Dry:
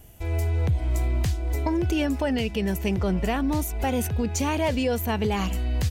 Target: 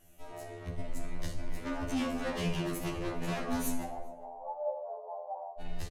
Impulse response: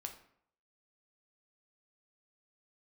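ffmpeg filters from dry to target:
-filter_complex "[0:a]dynaudnorm=f=210:g=9:m=10.5dB,asoftclip=type=tanh:threshold=-15.5dB,afreqshift=-49,volume=23dB,asoftclip=hard,volume=-23dB,asplit=3[a][b][c];[a]afade=t=out:st=3.83:d=0.02[d];[b]asuperpass=centerf=700:order=8:qfactor=1.8,afade=t=in:st=3.83:d=0.02,afade=t=out:st=5.59:d=0.02[e];[c]afade=t=in:st=5.59:d=0.02[f];[d][e][f]amix=inputs=3:normalize=0,asplit=2[g][h];[h]adelay=402.3,volume=-24dB,highshelf=f=4k:g=-9.05[i];[g][i]amix=inputs=2:normalize=0[j];[1:a]atrim=start_sample=2205,asetrate=23814,aresample=44100[k];[j][k]afir=irnorm=-1:irlink=0,afftfilt=real='re*2*eq(mod(b,4),0)':imag='im*2*eq(mod(b,4),0)':win_size=2048:overlap=0.75,volume=-6dB"

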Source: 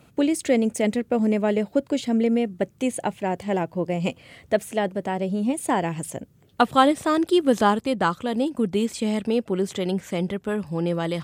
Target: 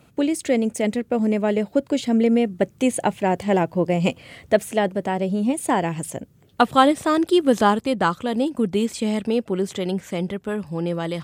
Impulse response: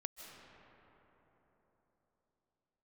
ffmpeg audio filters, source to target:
-af "dynaudnorm=f=220:g=21:m=7dB"

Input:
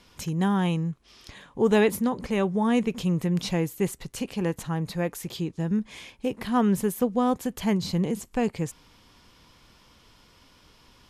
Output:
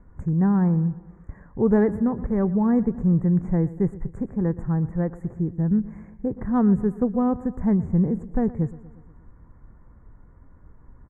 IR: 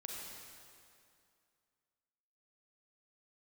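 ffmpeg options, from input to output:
-filter_complex "[0:a]asuperstop=centerf=3800:order=12:qfactor=0.73,aemphasis=mode=reproduction:type=riaa,asplit=2[a][b];[b]aecho=0:1:119|238|357|476|595:0.126|0.0718|0.0409|0.0233|0.0133[c];[a][c]amix=inputs=2:normalize=0,adynamicsmooth=sensitivity=2:basefreq=5.9k,volume=-3.5dB"

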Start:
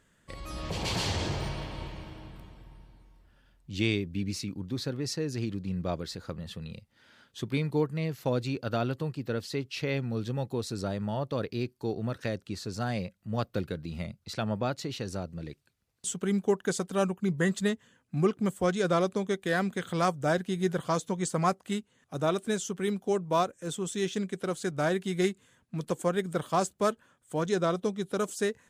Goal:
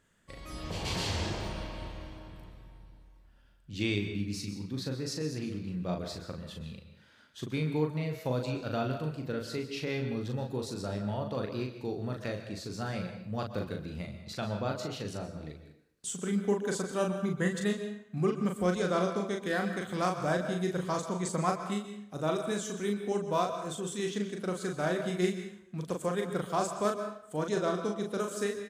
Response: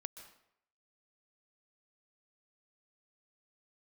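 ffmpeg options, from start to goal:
-filter_complex "[0:a]asplit=2[a][b];[b]adelay=39,volume=-4.5dB[c];[a][c]amix=inputs=2:normalize=0[d];[1:a]atrim=start_sample=2205[e];[d][e]afir=irnorm=-1:irlink=0"

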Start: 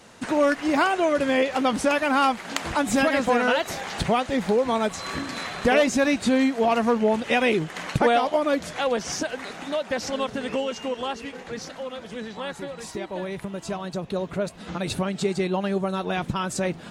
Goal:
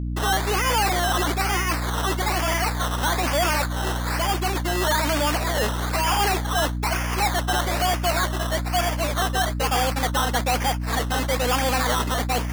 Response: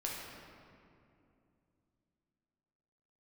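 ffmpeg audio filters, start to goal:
-filter_complex "[0:a]asplit=2[a][b];[b]highpass=f=720:p=1,volume=37dB,asoftclip=type=tanh:threshold=-5.5dB[c];[a][c]amix=inputs=2:normalize=0,lowpass=f=5.9k:p=1,volume=-6dB,asetrate=59535,aresample=44100,alimiter=limit=-13.5dB:level=0:latency=1:release=29,highshelf=f=2.9k:g=-9,agate=range=-52dB:threshold=-19dB:ratio=16:detection=peak,acrusher=samples=15:mix=1:aa=0.000001:lfo=1:lforange=9:lforate=1.1,highpass=f=720:p=1,aeval=exprs='val(0)+0.0631*(sin(2*PI*60*n/s)+sin(2*PI*2*60*n/s)/2+sin(2*PI*3*60*n/s)/3+sin(2*PI*4*60*n/s)/4+sin(2*PI*5*60*n/s)/5)':c=same,volume=-1.5dB"

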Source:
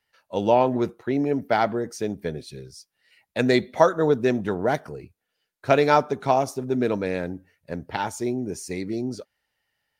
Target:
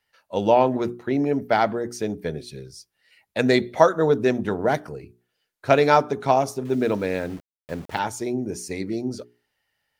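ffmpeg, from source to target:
-filter_complex "[0:a]bandreject=f=60:t=h:w=6,bandreject=f=120:t=h:w=6,bandreject=f=180:t=h:w=6,bandreject=f=240:t=h:w=6,bandreject=f=300:t=h:w=6,bandreject=f=360:t=h:w=6,bandreject=f=420:t=h:w=6,asettb=1/sr,asplit=3[a][b][c];[a]atrim=end=6.654[d];[b]atrim=start=6.65:end=7.99,asetpts=PTS-STARTPTS,afade=t=in:d=0.004:c=qsin,afade=t=out:st=1.336:d=0.004:c=qsin,aeval=exprs='val(0)*gte(abs(val(0)),0.00794)':c=same[e];[c]atrim=start=7.986[f];[d][e]acrossfade=d=0.004:c1=hsin:c2=qsin[g];[g][f]acrossfade=d=0.004:c1=qsin:c2=hsin,volume=1.5dB"

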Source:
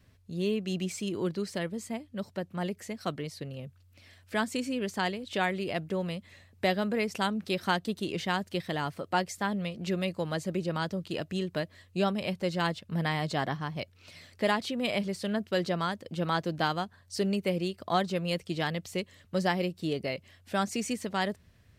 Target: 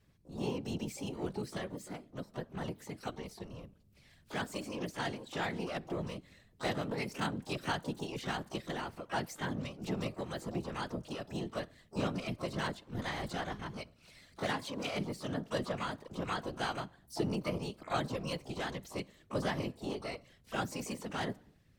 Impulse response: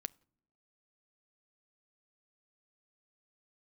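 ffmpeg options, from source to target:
-filter_complex "[1:a]atrim=start_sample=2205,afade=t=out:st=0.35:d=0.01,atrim=end_sample=15876,asetrate=33957,aresample=44100[a];[0:a][a]afir=irnorm=-1:irlink=0,afftfilt=real='hypot(re,im)*cos(2*PI*random(0))':imag='hypot(re,im)*sin(2*PI*random(1))':win_size=512:overlap=0.75,asplit=2[b][c];[c]asetrate=88200,aresample=44100,atempo=0.5,volume=-10dB[d];[b][d]amix=inputs=2:normalize=0"

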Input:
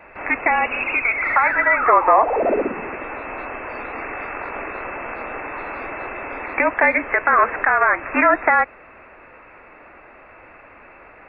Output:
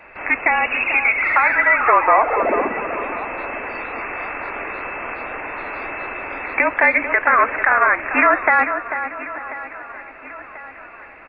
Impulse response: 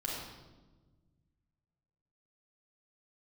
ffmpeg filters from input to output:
-filter_complex "[0:a]highshelf=f=2k:g=9,asplit=2[a][b];[b]aecho=0:1:1039|2078|3117|4156|5195:0.141|0.0735|0.0382|0.0199|0.0103[c];[a][c]amix=inputs=2:normalize=0,aresample=16000,aresample=44100,asplit=2[d][e];[e]adelay=443,lowpass=f=2.3k:p=1,volume=-8.5dB,asplit=2[f][g];[g]adelay=443,lowpass=f=2.3k:p=1,volume=0.39,asplit=2[h][i];[i]adelay=443,lowpass=f=2.3k:p=1,volume=0.39,asplit=2[j][k];[k]adelay=443,lowpass=f=2.3k:p=1,volume=0.39[l];[f][h][j][l]amix=inputs=4:normalize=0[m];[d][m]amix=inputs=2:normalize=0,volume=-2dB"

